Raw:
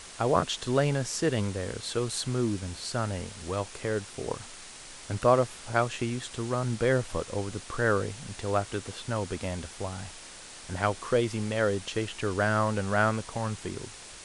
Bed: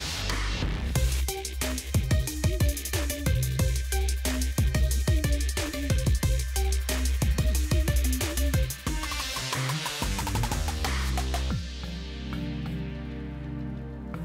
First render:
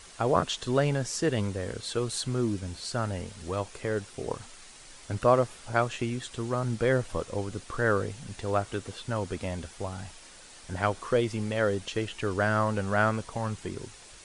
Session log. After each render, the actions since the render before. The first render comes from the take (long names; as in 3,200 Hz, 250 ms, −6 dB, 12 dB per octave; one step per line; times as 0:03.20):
broadband denoise 6 dB, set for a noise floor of −46 dBFS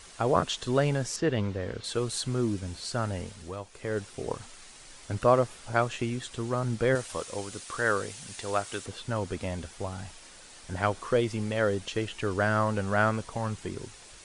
0:01.16–0:01.84: low-pass filter 4,000 Hz
0:03.28–0:04.00: duck −8 dB, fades 0.31 s
0:06.95–0:08.86: spectral tilt +2.5 dB per octave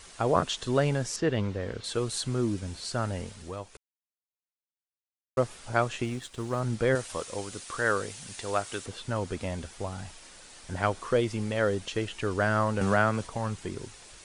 0:03.77–0:05.37: silence
0:06.04–0:06.60: mu-law and A-law mismatch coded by A
0:12.81–0:13.27: multiband upward and downward compressor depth 70%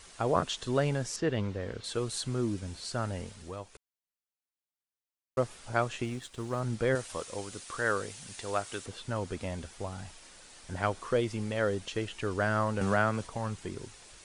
level −3 dB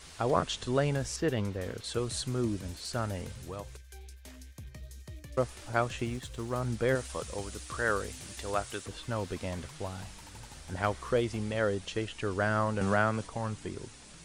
mix in bed −21.5 dB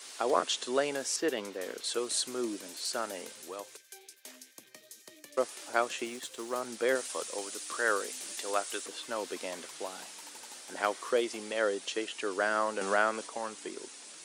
high-pass filter 290 Hz 24 dB per octave
high-shelf EQ 3,600 Hz +7 dB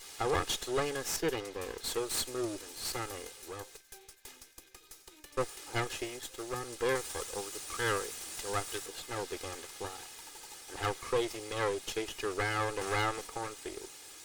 lower of the sound and its delayed copy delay 2.4 ms
soft clipping −19 dBFS, distortion −20 dB